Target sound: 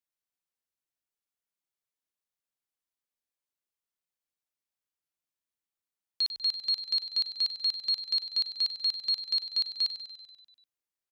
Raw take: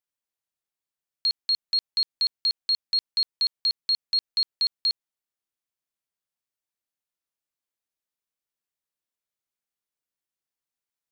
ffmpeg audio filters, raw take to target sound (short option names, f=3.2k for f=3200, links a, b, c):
-filter_complex "[0:a]areverse,asplit=9[a][b][c][d][e][f][g][h][i];[b]adelay=97,afreqshift=-40,volume=-12dB[j];[c]adelay=194,afreqshift=-80,volume=-15.7dB[k];[d]adelay=291,afreqshift=-120,volume=-19.5dB[l];[e]adelay=388,afreqshift=-160,volume=-23.2dB[m];[f]adelay=485,afreqshift=-200,volume=-27dB[n];[g]adelay=582,afreqshift=-240,volume=-30.7dB[o];[h]adelay=679,afreqshift=-280,volume=-34.5dB[p];[i]adelay=776,afreqshift=-320,volume=-38.2dB[q];[a][j][k][l][m][n][o][p][q]amix=inputs=9:normalize=0,volume=-4dB"